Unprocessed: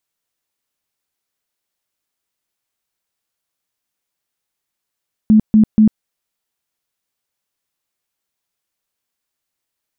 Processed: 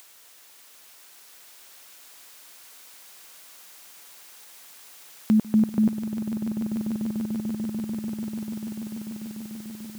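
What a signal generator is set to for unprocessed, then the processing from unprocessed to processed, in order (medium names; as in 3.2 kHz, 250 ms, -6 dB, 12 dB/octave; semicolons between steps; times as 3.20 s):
tone bursts 216 Hz, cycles 21, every 0.24 s, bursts 3, -5.5 dBFS
high-pass 530 Hz 6 dB/octave; upward compressor, threshold -29 dBFS; echo with a slow build-up 147 ms, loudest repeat 8, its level -10 dB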